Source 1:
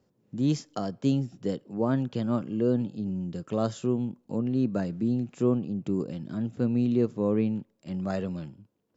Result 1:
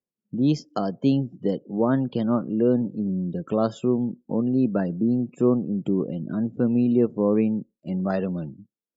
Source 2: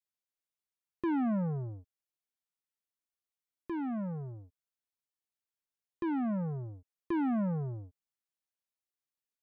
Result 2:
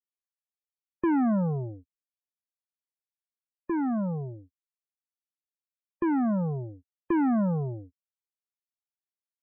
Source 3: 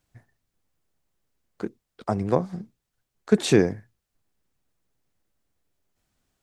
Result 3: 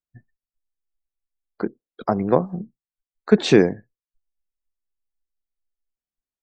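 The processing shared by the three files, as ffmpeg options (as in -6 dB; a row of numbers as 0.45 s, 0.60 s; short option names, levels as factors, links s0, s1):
-filter_complex "[0:a]acrossover=split=6100[s0][s1];[s1]acompressor=threshold=0.00126:ratio=4:attack=1:release=60[s2];[s0][s2]amix=inputs=2:normalize=0,equalizer=f=97:w=1.9:g=-9.5,asplit=2[s3][s4];[s4]acompressor=threshold=0.0158:ratio=6,volume=0.794[s5];[s3][s5]amix=inputs=2:normalize=0,afftdn=nr=33:nf=-44,volume=1.58"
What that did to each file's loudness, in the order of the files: +5.0 LU, +6.5 LU, +3.0 LU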